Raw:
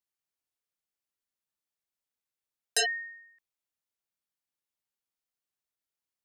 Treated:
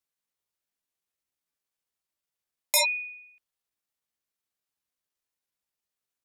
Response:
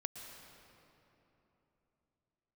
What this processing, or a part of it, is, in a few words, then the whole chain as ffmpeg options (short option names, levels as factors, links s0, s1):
chipmunk voice: -af "asetrate=58866,aresample=44100,atempo=0.749154,volume=1.58"